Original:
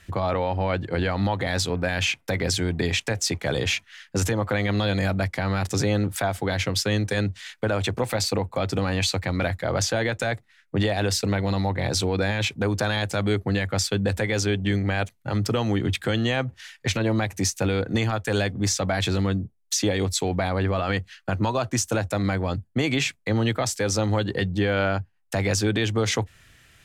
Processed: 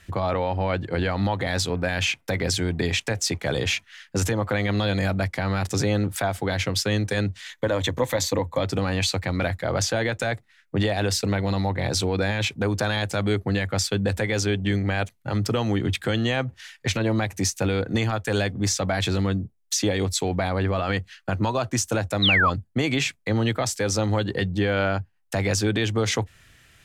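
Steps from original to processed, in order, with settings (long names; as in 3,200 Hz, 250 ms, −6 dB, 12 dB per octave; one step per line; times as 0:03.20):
0:07.50–0:08.64: EQ curve with evenly spaced ripples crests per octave 1.1, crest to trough 8 dB
0:22.22–0:22.50: sound drawn into the spectrogram fall 1,000–4,100 Hz −19 dBFS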